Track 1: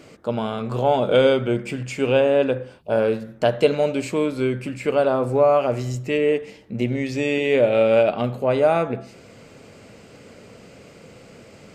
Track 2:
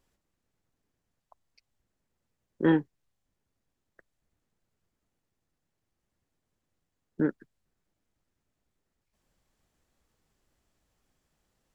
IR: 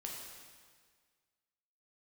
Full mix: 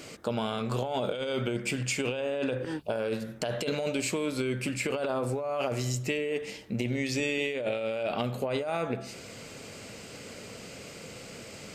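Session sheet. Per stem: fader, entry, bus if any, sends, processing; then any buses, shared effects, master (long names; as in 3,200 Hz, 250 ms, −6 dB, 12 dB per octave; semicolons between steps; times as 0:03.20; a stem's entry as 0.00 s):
−4.0 dB, 0.00 s, no send, compressor whose output falls as the input rises −22 dBFS, ratio −1
−8.0 dB, 0.00 s, no send, shaped tremolo saw up 6.8 Hz, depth 85%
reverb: not used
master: high-shelf EQ 2,400 Hz +10.5 dB; downward compressor 3 to 1, threshold −28 dBFS, peak gain reduction 8 dB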